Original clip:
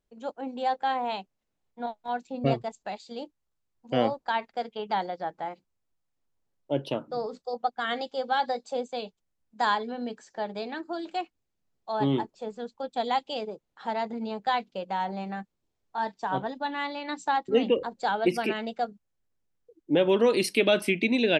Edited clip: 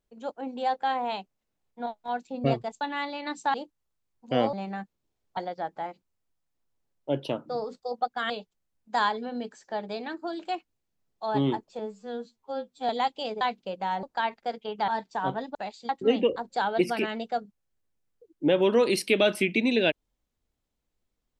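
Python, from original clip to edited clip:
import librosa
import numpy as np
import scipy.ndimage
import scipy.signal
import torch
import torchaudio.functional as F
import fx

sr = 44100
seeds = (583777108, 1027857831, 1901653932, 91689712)

y = fx.edit(x, sr, fx.swap(start_s=2.81, length_s=0.34, other_s=16.63, other_length_s=0.73),
    fx.swap(start_s=4.14, length_s=0.85, other_s=15.12, other_length_s=0.84),
    fx.cut(start_s=7.92, length_s=1.04),
    fx.stretch_span(start_s=12.45, length_s=0.55, factor=2.0),
    fx.cut(start_s=13.52, length_s=0.98), tone=tone)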